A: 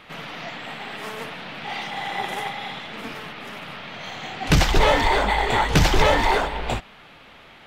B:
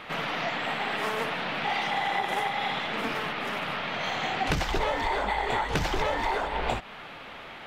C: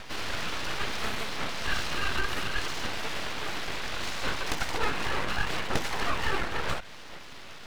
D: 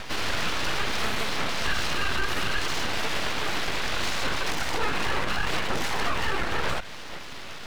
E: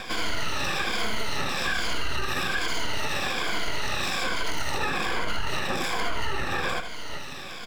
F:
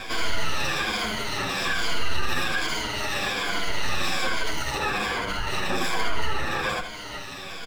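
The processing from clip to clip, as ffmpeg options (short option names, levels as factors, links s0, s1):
-af "equalizer=f=920:w=0.31:g=6,acompressor=threshold=0.0631:ratio=12"
-filter_complex "[0:a]acrossover=split=220|1200|3500[s0][s1][s2][s3];[s0]asoftclip=type=hard:threshold=0.0237[s4];[s1]aphaser=in_gain=1:out_gain=1:delay=2.9:decay=0.64:speed=0.7:type=triangular[s5];[s4][s5][s2][s3]amix=inputs=4:normalize=0,aeval=exprs='abs(val(0))':c=same"
-af "alimiter=limit=0.0891:level=0:latency=1:release=54,volume=2"
-af "afftfilt=real='re*pow(10,12/40*sin(2*PI*(1.8*log(max(b,1)*sr/1024/100)/log(2)-(-1.2)*(pts-256)/sr)))':imag='im*pow(10,12/40*sin(2*PI*(1.8*log(max(b,1)*sr/1024/100)/log(2)-(-1.2)*(pts-256)/sr)))':win_size=1024:overlap=0.75,acompressor=threshold=0.0794:ratio=6,aecho=1:1:79:0.316"
-filter_complex "[0:a]asplit=2[s0][s1];[s1]adelay=8.5,afreqshift=-0.52[s2];[s0][s2]amix=inputs=2:normalize=1,volume=1.68"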